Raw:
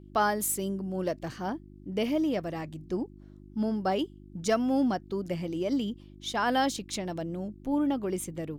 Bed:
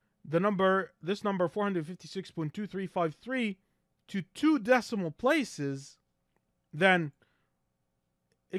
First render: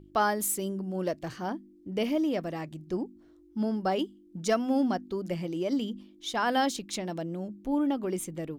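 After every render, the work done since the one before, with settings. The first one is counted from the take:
hum removal 50 Hz, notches 5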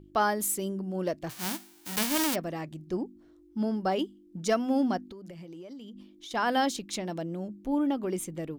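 0:01.29–0:02.34: spectral envelope flattened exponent 0.1
0:05.06–0:06.31: downward compressor 10 to 1, threshold −41 dBFS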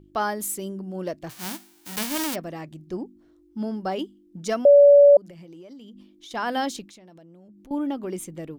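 0:04.65–0:05.17: beep over 572 Hz −8.5 dBFS
0:06.86–0:07.71: downward compressor, threshold −47 dBFS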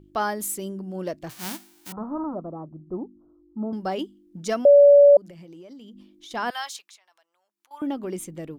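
0:01.92–0:03.73: Chebyshev low-pass filter 1,300 Hz, order 6
0:06.50–0:07.82: Chebyshev high-pass filter 1,000 Hz, order 3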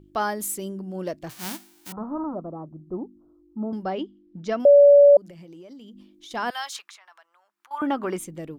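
0:03.83–0:04.60: high-frequency loss of the air 180 metres
0:06.72–0:08.18: parametric band 1,300 Hz +14.5 dB 1.8 octaves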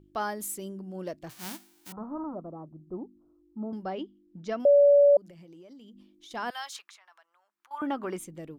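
level −6 dB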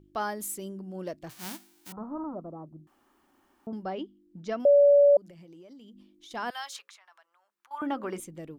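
0:02.87–0:03.67: fill with room tone
0:06.61–0:08.20: hum removal 60.13 Hz, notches 9

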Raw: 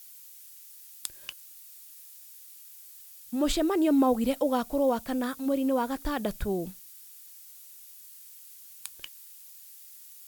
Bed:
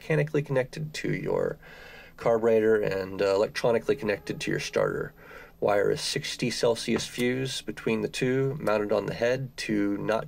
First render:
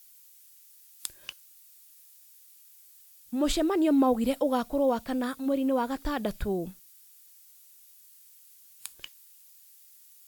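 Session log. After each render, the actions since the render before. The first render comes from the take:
noise reduction from a noise print 6 dB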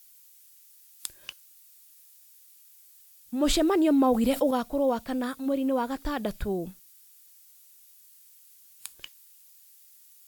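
0:03.42–0:04.51: envelope flattener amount 50%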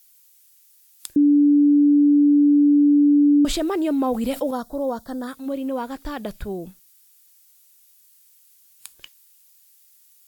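0:01.16–0:03.45: beep over 290 Hz −11.5 dBFS
0:04.52–0:05.28: Butterworth band-reject 2,500 Hz, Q 1.3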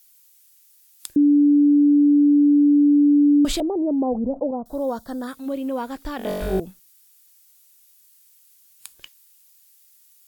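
0:03.60–0:04.66: Butterworth low-pass 850 Hz
0:06.17–0:06.60: flutter between parallel walls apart 3.6 metres, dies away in 1.4 s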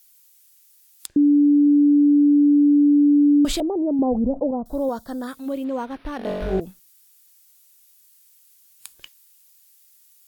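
0:01.06–0:01.67: high-frequency loss of the air 110 metres
0:03.99–0:04.89: low-shelf EQ 180 Hz +9 dB
0:05.64–0:06.61: linearly interpolated sample-rate reduction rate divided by 6×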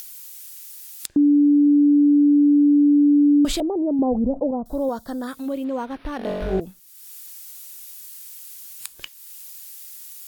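upward compression, threshold −25 dBFS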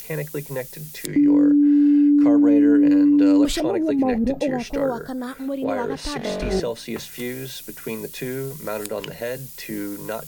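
mix in bed −3 dB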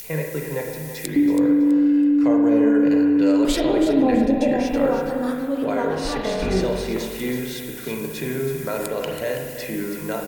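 repeating echo 327 ms, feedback 28%, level −10 dB
spring reverb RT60 1.3 s, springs 32/44 ms, chirp 70 ms, DRR 1.5 dB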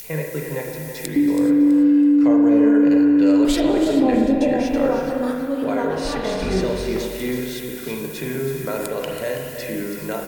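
reverb whose tail is shaped and stops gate 460 ms rising, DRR 9.5 dB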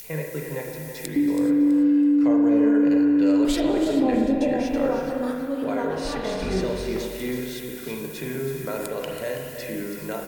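level −4 dB

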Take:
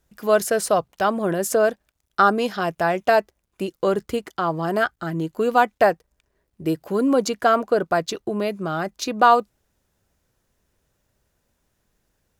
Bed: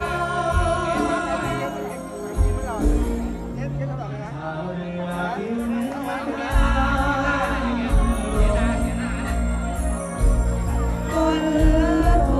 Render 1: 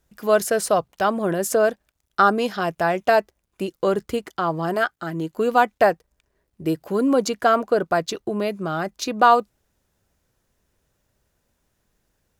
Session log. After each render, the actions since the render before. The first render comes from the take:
0:04.73–0:05.34: high-pass filter 350 Hz → 120 Hz 6 dB per octave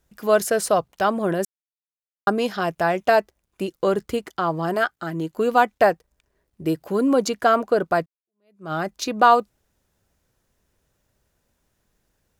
0:01.45–0:02.27: silence
0:08.06–0:08.72: fade in exponential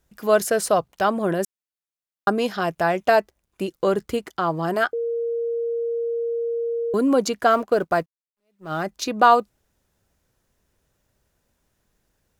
0:04.93–0:06.94: beep over 466 Hz −22 dBFS
0:07.50–0:08.84: mu-law and A-law mismatch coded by A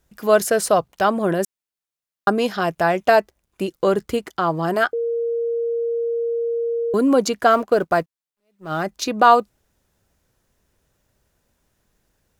level +2.5 dB
brickwall limiter −2 dBFS, peak gain reduction 2 dB

